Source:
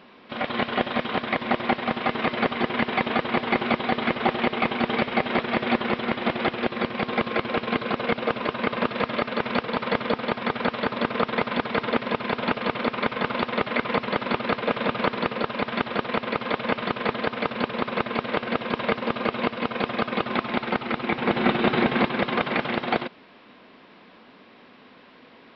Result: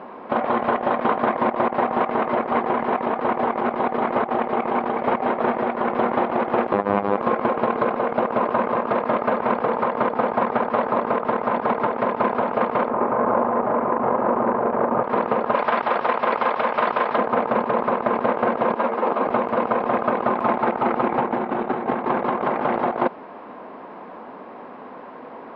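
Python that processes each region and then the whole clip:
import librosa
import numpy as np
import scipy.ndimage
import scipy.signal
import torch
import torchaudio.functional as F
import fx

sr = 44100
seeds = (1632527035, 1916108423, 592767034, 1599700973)

y = fx.chain(x, sr, fx.low_shelf(hz=460.0, db=6.5),
    fx.over_compress(threshold_db=-28.0, ratio=-0.5),
    fx.robotise(hz=101.0), at=(6.73, 7.17))
y = fx.chain(y, sr, fx.lowpass(hz=1300.0, slope=12),
    fx.over_compress(threshold_db=-31.0, ratio=-0.5),
    fx.doubler(ms=42.0, db=-4), at=(12.89, 15.04))
y = fx.chain(y, sr, fx.tilt_eq(slope=3.5),
    fx.hum_notches(base_hz=50, count=3), at=(15.55, 17.18))
y = fx.chain(y, sr, fx.highpass(hz=220.0, slope=24),
    fx.ensemble(), at=(18.75, 19.27))
y = fx.curve_eq(y, sr, hz=(110.0, 880.0, 3700.0), db=(0, 14, -13))
y = fx.over_compress(y, sr, threshold_db=-22.0, ratio=-1.0)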